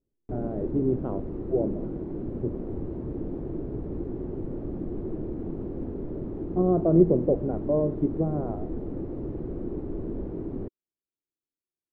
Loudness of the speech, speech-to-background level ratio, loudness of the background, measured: −26.5 LKFS, 8.5 dB, −35.0 LKFS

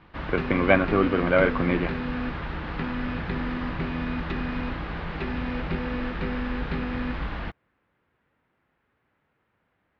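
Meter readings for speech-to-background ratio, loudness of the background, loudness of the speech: 7.5 dB, −31.0 LKFS, −23.5 LKFS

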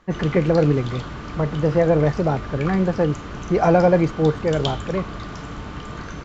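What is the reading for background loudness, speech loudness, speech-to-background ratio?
−33.0 LKFS, −20.5 LKFS, 12.5 dB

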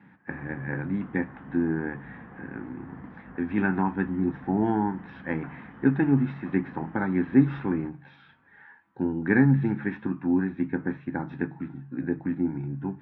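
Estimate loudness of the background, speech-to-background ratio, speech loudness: −47.0 LKFS, 19.5 dB, −27.5 LKFS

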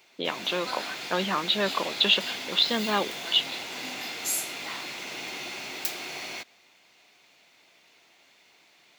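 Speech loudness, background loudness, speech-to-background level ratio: −26.0 LKFS, −33.0 LKFS, 7.0 dB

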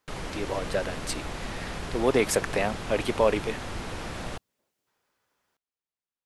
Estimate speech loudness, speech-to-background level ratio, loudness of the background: −28.0 LKFS, 8.5 dB, −36.5 LKFS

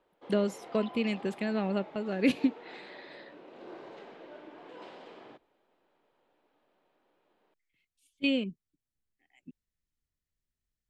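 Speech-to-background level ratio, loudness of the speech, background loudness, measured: 18.0 dB, −31.0 LKFS, −49.0 LKFS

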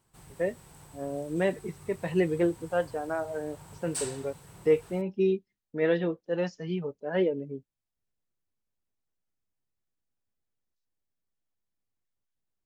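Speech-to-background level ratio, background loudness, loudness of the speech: 14.5 dB, −45.0 LKFS, −30.5 LKFS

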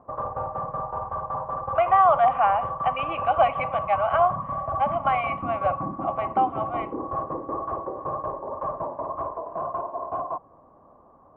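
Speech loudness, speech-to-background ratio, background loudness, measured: −24.0 LKFS, 6.5 dB, −30.5 LKFS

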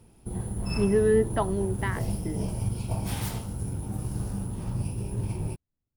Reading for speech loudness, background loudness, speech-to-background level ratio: −27.0 LKFS, −32.5 LKFS, 5.5 dB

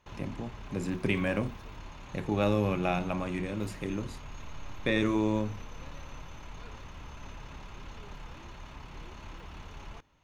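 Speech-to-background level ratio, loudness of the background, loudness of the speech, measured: 15.5 dB, −47.0 LKFS, −31.5 LKFS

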